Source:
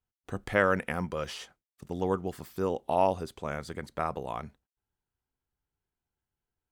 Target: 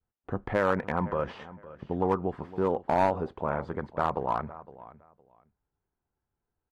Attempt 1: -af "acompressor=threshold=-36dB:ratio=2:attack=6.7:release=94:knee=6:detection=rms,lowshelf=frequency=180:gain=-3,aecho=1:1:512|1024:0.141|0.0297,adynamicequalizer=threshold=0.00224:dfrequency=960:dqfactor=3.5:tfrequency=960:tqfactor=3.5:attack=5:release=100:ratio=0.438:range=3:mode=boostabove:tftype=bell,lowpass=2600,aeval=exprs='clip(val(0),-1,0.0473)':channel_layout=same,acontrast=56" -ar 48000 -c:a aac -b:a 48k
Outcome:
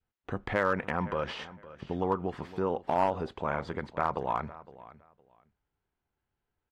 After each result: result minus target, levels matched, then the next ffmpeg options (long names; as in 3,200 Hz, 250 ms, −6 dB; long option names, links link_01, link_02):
downward compressor: peak gain reduction +3.5 dB; 2,000 Hz band +3.0 dB
-af "acompressor=threshold=-29dB:ratio=2:attack=6.7:release=94:knee=6:detection=rms,lowshelf=frequency=180:gain=-3,aecho=1:1:512|1024:0.141|0.0297,adynamicequalizer=threshold=0.00224:dfrequency=960:dqfactor=3.5:tfrequency=960:tqfactor=3.5:attack=5:release=100:ratio=0.438:range=3:mode=boostabove:tftype=bell,lowpass=2600,aeval=exprs='clip(val(0),-1,0.0473)':channel_layout=same,acontrast=56" -ar 48000 -c:a aac -b:a 48k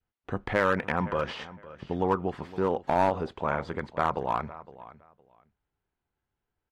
2,000 Hz band +3.5 dB
-af "acompressor=threshold=-29dB:ratio=2:attack=6.7:release=94:knee=6:detection=rms,lowshelf=frequency=180:gain=-3,aecho=1:1:512|1024:0.141|0.0297,adynamicequalizer=threshold=0.00224:dfrequency=960:dqfactor=3.5:tfrequency=960:tqfactor=3.5:attack=5:release=100:ratio=0.438:range=3:mode=boostabove:tftype=bell,lowpass=1300,aeval=exprs='clip(val(0),-1,0.0473)':channel_layout=same,acontrast=56" -ar 48000 -c:a aac -b:a 48k